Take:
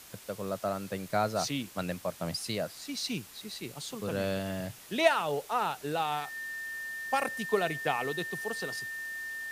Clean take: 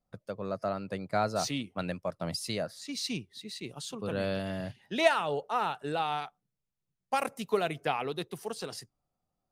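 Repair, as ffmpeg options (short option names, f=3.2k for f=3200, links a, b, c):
-af "bandreject=f=1.8k:w=30,afwtdn=0.0032"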